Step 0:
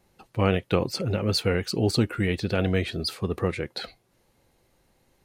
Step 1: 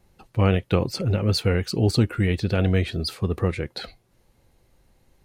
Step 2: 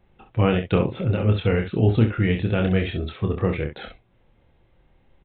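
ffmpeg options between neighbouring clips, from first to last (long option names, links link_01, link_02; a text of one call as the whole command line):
ffmpeg -i in.wav -af "lowshelf=frequency=110:gain=11" out.wav
ffmpeg -i in.wav -filter_complex "[0:a]asplit=2[link_01][link_02];[link_02]aecho=0:1:27|66:0.562|0.355[link_03];[link_01][link_03]amix=inputs=2:normalize=0,aresample=8000,aresample=44100" out.wav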